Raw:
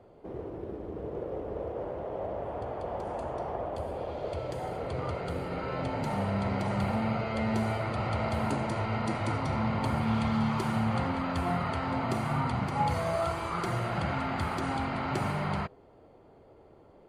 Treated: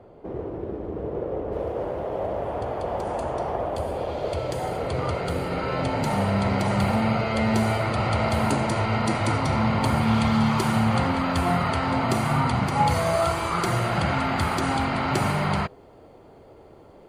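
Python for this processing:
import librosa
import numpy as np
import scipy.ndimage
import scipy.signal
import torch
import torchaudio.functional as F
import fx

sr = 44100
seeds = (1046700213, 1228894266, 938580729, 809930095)

y = fx.high_shelf(x, sr, hz=3700.0, db=fx.steps((0.0, -7.0), (1.51, 6.5)))
y = y * librosa.db_to_amplitude(7.0)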